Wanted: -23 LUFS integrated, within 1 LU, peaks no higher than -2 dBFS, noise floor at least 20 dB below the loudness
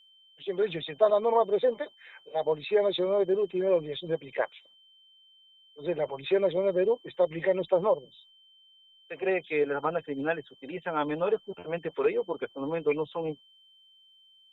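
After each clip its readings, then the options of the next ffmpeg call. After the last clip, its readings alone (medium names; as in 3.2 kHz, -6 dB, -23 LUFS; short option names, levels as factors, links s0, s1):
steady tone 3.1 kHz; tone level -57 dBFS; loudness -29.0 LUFS; peak level -11.0 dBFS; loudness target -23.0 LUFS
-> -af "bandreject=f=3100:w=30"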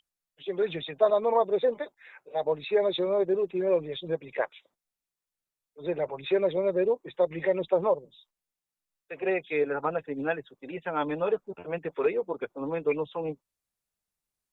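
steady tone not found; loudness -29.0 LUFS; peak level -11.0 dBFS; loudness target -23.0 LUFS
-> -af "volume=2"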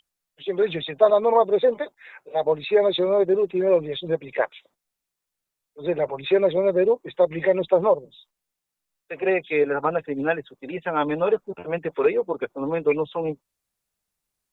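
loudness -23.0 LUFS; peak level -5.0 dBFS; noise floor -85 dBFS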